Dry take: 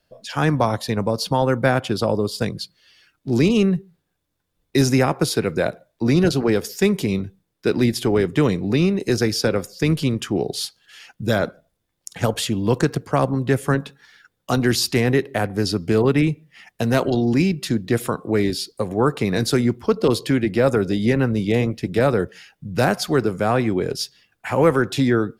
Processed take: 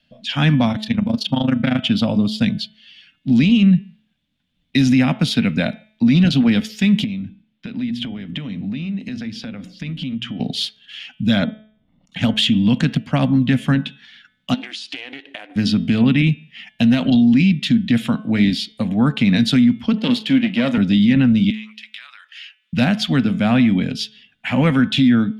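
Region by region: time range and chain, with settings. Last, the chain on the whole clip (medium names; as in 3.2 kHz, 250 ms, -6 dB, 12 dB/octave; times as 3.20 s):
0.72–1.84 s: AM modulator 26 Hz, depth 80% + loudspeaker Doppler distortion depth 0.14 ms
7.04–10.40 s: treble shelf 4.8 kHz -10.5 dB + hum notches 60/120/180/240/300/360 Hz + compression, threshold -30 dBFS
11.44–12.13 s: Savitzky-Golay filter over 65 samples + doubling 46 ms -12 dB + swell ahead of each attack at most 26 dB/s
14.54–15.56 s: brick-wall FIR band-pass 280–11000 Hz + compression 12:1, threshold -30 dBFS + loudspeaker Doppler distortion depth 0.43 ms
19.98–20.78 s: partial rectifier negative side -7 dB + high-pass 220 Hz + doubling 37 ms -14 dB
21.50–22.73 s: Chebyshev high-pass 1.1 kHz, order 4 + compression 10:1, threshold -39 dBFS
whole clip: FFT filter 100 Hz 0 dB, 250 Hz +14 dB, 370 Hz -14 dB, 630 Hz -1 dB, 1.1 kHz -5 dB, 3.2 kHz +14 dB, 4.9 kHz -1 dB, 13 kHz -13 dB; peak limiter -7 dBFS; de-hum 215.8 Hz, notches 17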